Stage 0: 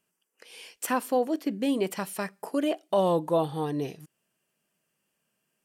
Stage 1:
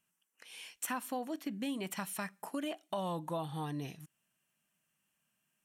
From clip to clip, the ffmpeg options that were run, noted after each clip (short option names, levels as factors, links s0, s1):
-af "equalizer=f=440:w=1.4:g=-12.5,bandreject=f=4800:w=6.9,acompressor=threshold=0.0224:ratio=3,volume=0.794"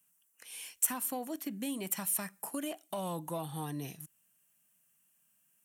-filter_complex "[0:a]acrossover=split=100|710|5800[s0][s1][s2][s3];[s2]asoftclip=type=tanh:threshold=0.0133[s4];[s3]crystalizer=i=2.5:c=0[s5];[s0][s1][s4][s5]amix=inputs=4:normalize=0"